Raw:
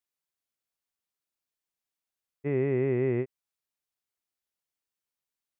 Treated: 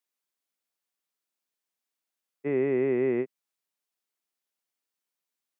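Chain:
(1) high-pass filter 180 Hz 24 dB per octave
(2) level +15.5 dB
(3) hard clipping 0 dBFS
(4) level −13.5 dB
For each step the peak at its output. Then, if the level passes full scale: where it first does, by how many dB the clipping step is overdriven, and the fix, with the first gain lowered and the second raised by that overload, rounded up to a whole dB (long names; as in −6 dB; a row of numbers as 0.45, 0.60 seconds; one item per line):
−20.0, −4.5, −4.5, −18.0 dBFS
no step passes full scale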